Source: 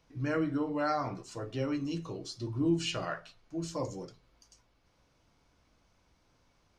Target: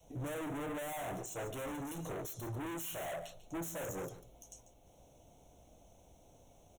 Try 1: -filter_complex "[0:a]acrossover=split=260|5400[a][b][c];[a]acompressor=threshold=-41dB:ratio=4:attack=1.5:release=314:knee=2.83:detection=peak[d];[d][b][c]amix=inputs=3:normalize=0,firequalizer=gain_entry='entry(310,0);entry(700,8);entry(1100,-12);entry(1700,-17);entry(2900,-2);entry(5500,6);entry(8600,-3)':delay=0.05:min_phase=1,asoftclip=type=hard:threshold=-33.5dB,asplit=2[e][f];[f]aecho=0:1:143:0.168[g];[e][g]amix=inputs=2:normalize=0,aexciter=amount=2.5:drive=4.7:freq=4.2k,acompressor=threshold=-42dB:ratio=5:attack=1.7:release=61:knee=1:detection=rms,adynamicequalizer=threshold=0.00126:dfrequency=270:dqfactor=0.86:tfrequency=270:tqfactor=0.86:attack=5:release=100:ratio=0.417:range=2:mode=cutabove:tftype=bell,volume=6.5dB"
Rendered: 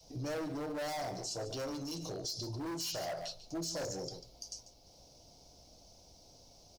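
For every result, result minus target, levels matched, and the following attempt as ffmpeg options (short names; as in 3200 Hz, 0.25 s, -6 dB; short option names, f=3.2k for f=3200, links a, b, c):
4000 Hz band +10.0 dB; hard clip: distortion -4 dB
-filter_complex "[0:a]acrossover=split=260|5400[a][b][c];[a]acompressor=threshold=-41dB:ratio=4:attack=1.5:release=314:knee=2.83:detection=peak[d];[d][b][c]amix=inputs=3:normalize=0,firequalizer=gain_entry='entry(310,0);entry(700,8);entry(1100,-12);entry(1700,-17);entry(2900,-2);entry(5500,6);entry(8600,-3)':delay=0.05:min_phase=1,asoftclip=type=hard:threshold=-33.5dB,asplit=2[e][f];[f]aecho=0:1:143:0.168[g];[e][g]amix=inputs=2:normalize=0,aexciter=amount=2.5:drive=4.7:freq=4.2k,acompressor=threshold=-42dB:ratio=5:attack=1.7:release=61:knee=1:detection=rms,adynamicequalizer=threshold=0.00126:dfrequency=270:dqfactor=0.86:tfrequency=270:tqfactor=0.86:attack=5:release=100:ratio=0.417:range=2:mode=cutabove:tftype=bell,asuperstop=centerf=4800:order=4:qfactor=1.3,volume=6.5dB"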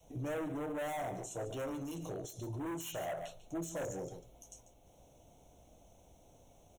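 hard clip: distortion -4 dB
-filter_complex "[0:a]acrossover=split=260|5400[a][b][c];[a]acompressor=threshold=-41dB:ratio=4:attack=1.5:release=314:knee=2.83:detection=peak[d];[d][b][c]amix=inputs=3:normalize=0,firequalizer=gain_entry='entry(310,0);entry(700,8);entry(1100,-12);entry(1700,-17);entry(2900,-2);entry(5500,6);entry(8600,-3)':delay=0.05:min_phase=1,asoftclip=type=hard:threshold=-43.5dB,asplit=2[e][f];[f]aecho=0:1:143:0.168[g];[e][g]amix=inputs=2:normalize=0,aexciter=amount=2.5:drive=4.7:freq=4.2k,acompressor=threshold=-42dB:ratio=5:attack=1.7:release=61:knee=1:detection=rms,adynamicequalizer=threshold=0.00126:dfrequency=270:dqfactor=0.86:tfrequency=270:tqfactor=0.86:attack=5:release=100:ratio=0.417:range=2:mode=cutabove:tftype=bell,asuperstop=centerf=4800:order=4:qfactor=1.3,volume=6.5dB"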